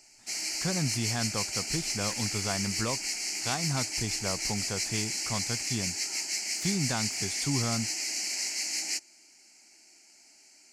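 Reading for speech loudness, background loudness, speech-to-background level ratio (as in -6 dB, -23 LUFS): -35.0 LUFS, -30.5 LUFS, -4.5 dB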